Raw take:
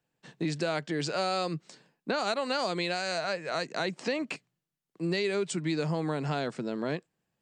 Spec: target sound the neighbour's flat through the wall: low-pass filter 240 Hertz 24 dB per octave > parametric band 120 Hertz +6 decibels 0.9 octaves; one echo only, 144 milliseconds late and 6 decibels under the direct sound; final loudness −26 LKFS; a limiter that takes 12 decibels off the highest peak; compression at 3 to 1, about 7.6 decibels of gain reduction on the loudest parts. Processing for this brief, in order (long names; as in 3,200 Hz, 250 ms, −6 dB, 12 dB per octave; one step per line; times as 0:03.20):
downward compressor 3 to 1, threshold −36 dBFS
brickwall limiter −34.5 dBFS
low-pass filter 240 Hz 24 dB per octave
parametric band 120 Hz +6 dB 0.9 octaves
single-tap delay 144 ms −6 dB
level +21 dB